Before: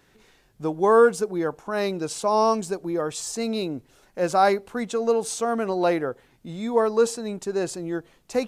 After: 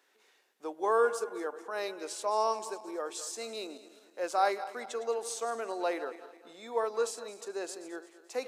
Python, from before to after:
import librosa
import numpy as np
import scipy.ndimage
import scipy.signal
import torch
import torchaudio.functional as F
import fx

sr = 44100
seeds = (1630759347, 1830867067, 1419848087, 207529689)

y = fx.reverse_delay_fb(x, sr, ms=108, feedback_pct=64, wet_db=-13.5)
y = scipy.signal.sosfilt(scipy.signal.bessel(6, 490.0, 'highpass', norm='mag', fs=sr, output='sos'), y)
y = F.gain(torch.from_numpy(y), -7.5).numpy()